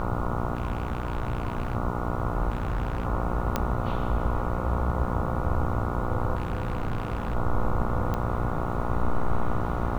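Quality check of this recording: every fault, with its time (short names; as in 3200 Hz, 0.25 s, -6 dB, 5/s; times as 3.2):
buzz 60 Hz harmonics 24 -31 dBFS
0.55–1.75 clipped -23.5 dBFS
2.49–3.05 clipped -23.5 dBFS
3.56 pop -11 dBFS
6.35–7.36 clipped -24 dBFS
8.14 pop -17 dBFS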